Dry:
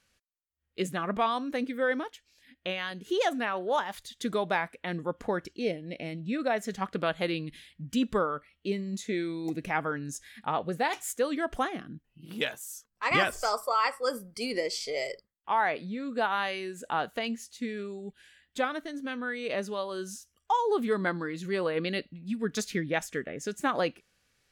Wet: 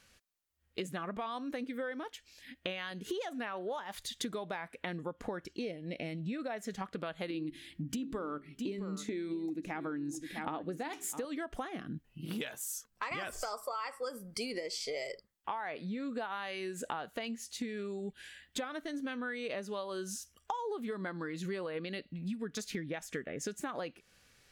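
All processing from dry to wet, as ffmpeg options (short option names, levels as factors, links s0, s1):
-filter_complex "[0:a]asettb=1/sr,asplit=3[s0][s1][s2];[s0]atrim=end=7.304[s3];[s1]atrim=start=7.3:end=11.25,asetpts=PTS-STARTPTS,afade=t=in:d=0.004:c=qsin,afade=t=out:st=3.946:d=0.004:c=qsin,equalizer=f=300:t=o:w=0.44:g=13,bandreject=f=67.57:t=h:w=4,bandreject=f=135.14:t=h:w=4,bandreject=f=202.71:t=h:w=4,bandreject=f=270.28:t=h:w=4,bandreject=f=337.85:t=h:w=4,bandreject=f=405.42:t=h:w=4,aecho=1:1:658:0.15,atrim=end_sample=174195[s4];[s2]atrim=start=11.246[s5];[s3][s4]acrossfade=d=0.004:c1=hsin:c2=qsin[s6];[s6][s5]acrossfade=d=0.004:c1=qsin:c2=hsin,alimiter=limit=0.1:level=0:latency=1:release=158,acompressor=threshold=0.00794:ratio=10,volume=2.11"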